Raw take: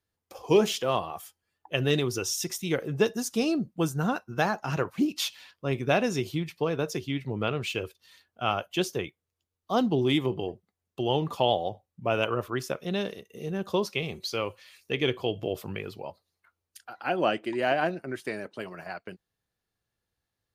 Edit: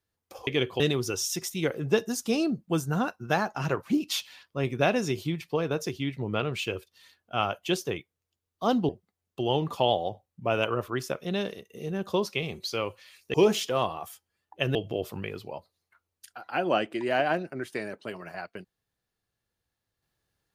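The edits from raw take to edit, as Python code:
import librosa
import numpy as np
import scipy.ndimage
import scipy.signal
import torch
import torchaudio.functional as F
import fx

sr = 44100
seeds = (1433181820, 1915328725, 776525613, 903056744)

y = fx.edit(x, sr, fx.swap(start_s=0.47, length_s=1.41, other_s=14.94, other_length_s=0.33),
    fx.cut(start_s=9.97, length_s=0.52), tone=tone)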